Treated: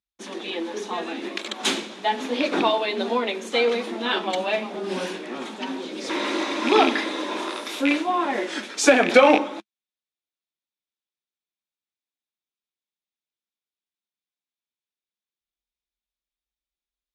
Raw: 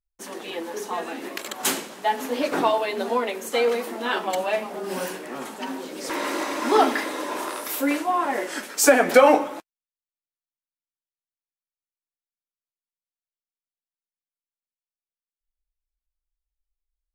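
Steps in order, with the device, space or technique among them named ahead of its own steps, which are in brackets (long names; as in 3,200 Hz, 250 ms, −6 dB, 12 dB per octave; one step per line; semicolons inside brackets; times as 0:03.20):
car door speaker with a rattle (loose part that buzzes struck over −28 dBFS, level −15 dBFS; loudspeaker in its box 80–8,600 Hz, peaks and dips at 120 Hz −10 dB, 210 Hz +7 dB, 340 Hz +6 dB, 2,400 Hz +5 dB, 3,600 Hz +10 dB, 8,000 Hz −6 dB)
level −1 dB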